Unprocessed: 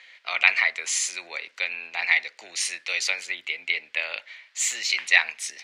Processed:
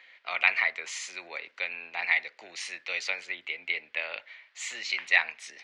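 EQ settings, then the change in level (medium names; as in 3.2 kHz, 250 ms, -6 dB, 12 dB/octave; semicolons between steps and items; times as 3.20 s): tape spacing loss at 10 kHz 21 dB; 0.0 dB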